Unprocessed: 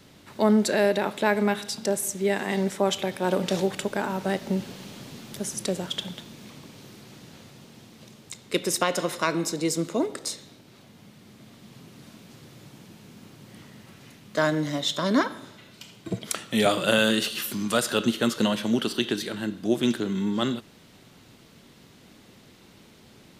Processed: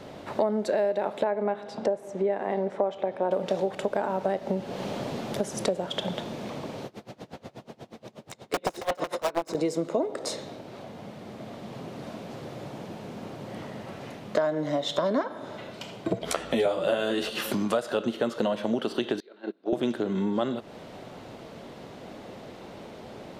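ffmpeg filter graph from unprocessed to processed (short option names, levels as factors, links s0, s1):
-filter_complex "[0:a]asettb=1/sr,asplit=3[s0][s1][s2];[s0]atrim=end=1.244[s3];[s1]atrim=start=1.24:end=3.31,asetpts=PTS-STARTPTS,afade=t=in:d=0.004:c=qsin,afade=t=out:st=2.066:d=0.004:c=qsin,lowpass=f=1200:p=1,lowshelf=f=170:g=-8.5[s4];[s2]atrim=start=3.306[s5];[s3][s4]acrossfade=d=0.004:c1=hsin:c2=qsin[s6];[s6][s5]acrossfade=d=0.004:c1=qsin:c2=hsin,asettb=1/sr,asplit=3[s7][s8][s9];[s7]atrim=end=6.864[s10];[s8]atrim=start=6.86:end=9.55,asetpts=PTS-STARTPTS,afade=t=in:d=0.004:c=qsin,afade=t=out:st=2.686:d=0.004:c=qsin,aeval=exprs='(mod(10*val(0)+1,2)-1)/10':c=same,aeval=exprs='val(0)*pow(10,-26*(0.5-0.5*cos(2*PI*8.3*n/s))/20)':c=same[s11];[s9]atrim=start=9.546[s12];[s10][s11]acrossfade=d=0.004:c1=hsin:c2=qsin[s13];[s13][s12]acrossfade=d=0.004:c1=qsin:c2=hsin,asettb=1/sr,asplit=3[s14][s15][s16];[s14]atrim=end=16.214[s17];[s15]atrim=start=16.21:end=17.3,asetpts=PTS-STARTPTS,afade=t=in:d=0.004:c=qsin,afade=t=out:st=1.086:d=0.004:c=qsin,highpass=45,aeval=exprs='val(0)+0.00251*(sin(2*PI*60*n/s)+sin(2*PI*2*60*n/s)/2+sin(2*PI*3*60*n/s)/3+sin(2*PI*4*60*n/s)/4+sin(2*PI*5*60*n/s)/5)':c=same,asplit=2[s18][s19];[s19]adelay=12,volume=0.75[s20];[s18][s20]amix=inputs=2:normalize=0,atrim=end_sample=48069[s21];[s16]atrim=start=17.296[s22];[s17][s21]acrossfade=d=0.004:c1=hsin:c2=qsin[s23];[s23][s22]acrossfade=d=0.004:c1=qsin:c2=hsin,asettb=1/sr,asplit=3[s24][s25][s26];[s24]atrim=end=19.204[s27];[s25]atrim=start=19.2:end=19.73,asetpts=PTS-STARTPTS,afade=t=in:d=0.004:c=qsin,afade=t=out:st=0.526:d=0.004:c=qsin,agate=range=0.0398:threshold=0.0398:ratio=16:release=100:detection=peak,highpass=f=250:w=0.5412,highpass=f=250:w=1.3066,equalizer=f=390:t=q:w=4:g=9,equalizer=f=1400:t=q:w=4:g=5,equalizer=f=2400:t=q:w=4:g=5,equalizer=f=4100:t=q:w=4:g=8,lowpass=f=5400:w=0.5412,lowpass=f=5400:w=1.3066,acompressor=threshold=0.00158:ratio=1.5:attack=3.2:release=140:knee=1:detection=peak[s28];[s26]atrim=start=19.726[s29];[s27][s28]acrossfade=d=0.004:c1=hsin:c2=qsin[s30];[s30][s29]acrossfade=d=0.004:c1=qsin:c2=hsin,lowpass=f=3600:p=1,equalizer=f=630:w=0.93:g=13,acompressor=threshold=0.0316:ratio=5,volume=1.78"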